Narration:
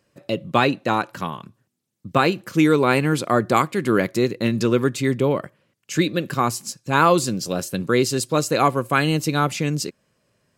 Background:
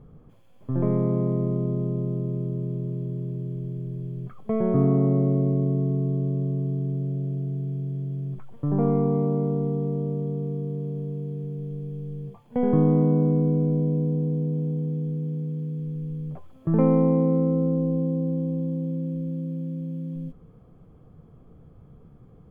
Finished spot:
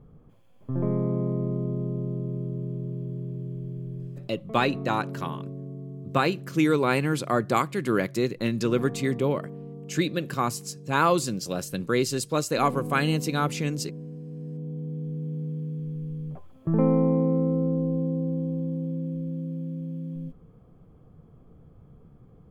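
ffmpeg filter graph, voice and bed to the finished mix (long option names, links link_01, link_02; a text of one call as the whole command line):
ffmpeg -i stem1.wav -i stem2.wav -filter_complex "[0:a]adelay=4000,volume=-5.5dB[link_01];[1:a]volume=9.5dB,afade=type=out:start_time=4.02:duration=0.33:silence=0.266073,afade=type=in:start_time=14.25:duration=1.21:silence=0.237137[link_02];[link_01][link_02]amix=inputs=2:normalize=0" out.wav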